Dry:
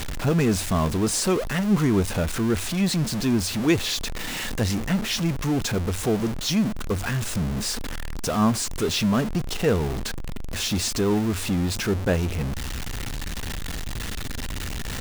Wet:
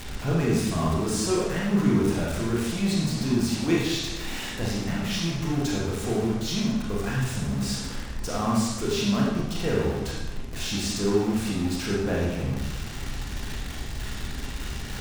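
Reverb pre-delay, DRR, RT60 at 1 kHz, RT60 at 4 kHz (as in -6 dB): 26 ms, -4.5 dB, 1.0 s, 0.90 s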